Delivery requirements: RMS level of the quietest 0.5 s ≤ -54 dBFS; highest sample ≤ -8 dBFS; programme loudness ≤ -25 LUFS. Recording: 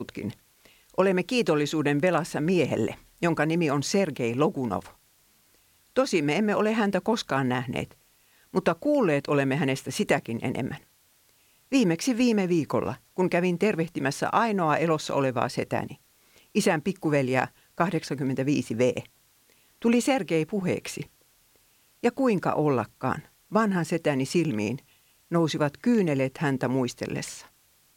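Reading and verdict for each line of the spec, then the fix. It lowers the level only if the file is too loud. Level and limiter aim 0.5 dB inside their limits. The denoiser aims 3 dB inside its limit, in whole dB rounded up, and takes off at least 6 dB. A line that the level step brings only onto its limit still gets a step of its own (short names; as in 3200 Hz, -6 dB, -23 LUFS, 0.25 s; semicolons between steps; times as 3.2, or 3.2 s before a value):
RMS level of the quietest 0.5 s -63 dBFS: OK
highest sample -7.5 dBFS: fail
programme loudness -26.0 LUFS: OK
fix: limiter -8.5 dBFS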